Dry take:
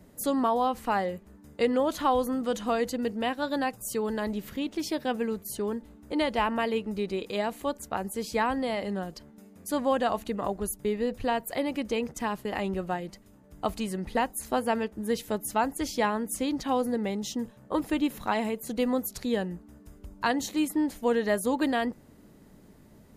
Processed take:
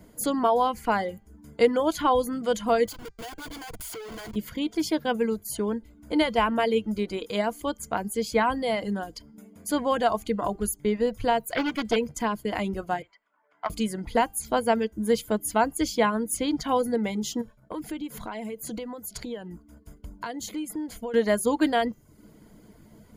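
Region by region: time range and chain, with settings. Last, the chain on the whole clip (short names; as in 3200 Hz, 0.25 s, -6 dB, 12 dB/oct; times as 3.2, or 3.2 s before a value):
2.86–4.36 pre-emphasis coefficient 0.9 + comb 2.6 ms, depth 70% + Schmitt trigger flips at -47.5 dBFS
11.42–11.96 dynamic EQ 2200 Hz, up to +5 dB, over -47 dBFS, Q 0.96 + Doppler distortion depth 0.45 ms
13.02–13.7 Butterworth band-pass 1400 Hz, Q 0.85 + Doppler distortion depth 0.12 ms
17.41–21.14 expander -49 dBFS + compressor 8:1, threshold -34 dBFS
whole clip: de-hum 395.9 Hz, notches 24; reverb removal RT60 0.57 s; ripple EQ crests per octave 1.8, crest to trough 7 dB; gain +3 dB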